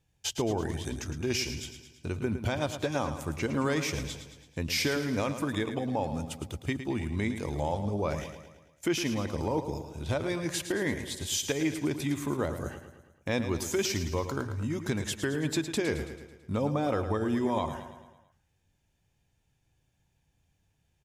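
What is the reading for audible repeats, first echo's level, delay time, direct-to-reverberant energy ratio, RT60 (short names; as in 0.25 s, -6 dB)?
5, -10.0 dB, 0.11 s, none, none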